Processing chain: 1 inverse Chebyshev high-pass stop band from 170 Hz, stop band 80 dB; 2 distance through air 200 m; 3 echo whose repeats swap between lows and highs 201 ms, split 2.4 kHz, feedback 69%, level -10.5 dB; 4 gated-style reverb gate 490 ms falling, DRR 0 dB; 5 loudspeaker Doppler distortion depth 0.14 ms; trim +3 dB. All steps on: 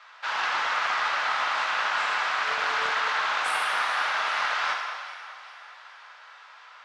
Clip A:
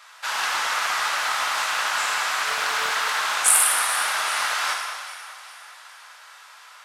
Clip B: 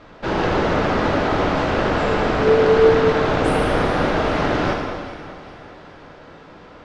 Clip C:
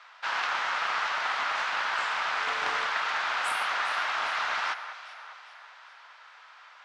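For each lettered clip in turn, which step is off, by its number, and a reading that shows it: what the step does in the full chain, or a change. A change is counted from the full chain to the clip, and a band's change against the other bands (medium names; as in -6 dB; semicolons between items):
2, 8 kHz band +19.5 dB; 1, 500 Hz band +23.0 dB; 4, crest factor change +2.5 dB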